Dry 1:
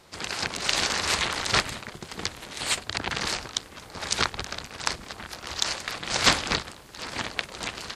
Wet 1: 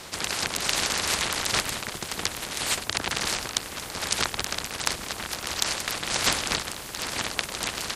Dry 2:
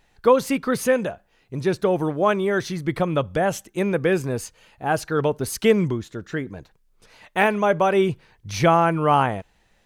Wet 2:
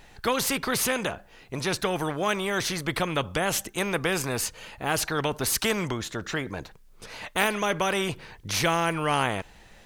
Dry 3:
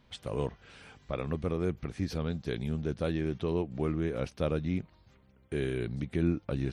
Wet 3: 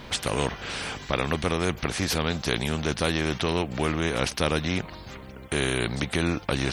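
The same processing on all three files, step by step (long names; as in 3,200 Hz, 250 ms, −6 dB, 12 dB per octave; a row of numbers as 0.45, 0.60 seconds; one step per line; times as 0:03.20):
every bin compressed towards the loudest bin 2 to 1
loudness normalisation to −27 LKFS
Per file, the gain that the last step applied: 0.0, −3.5, +7.5 decibels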